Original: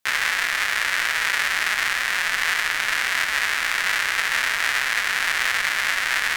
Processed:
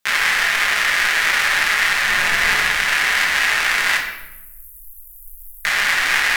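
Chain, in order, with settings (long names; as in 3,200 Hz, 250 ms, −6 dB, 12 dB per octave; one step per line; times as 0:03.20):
0:02.04–0:02.67: low-shelf EQ 370 Hz +7.5 dB
0:03.97–0:05.65: inverse Chebyshev band-stop filter 150–5,000 Hz, stop band 60 dB
convolution reverb RT60 0.95 s, pre-delay 5 ms, DRR −1 dB
level +2 dB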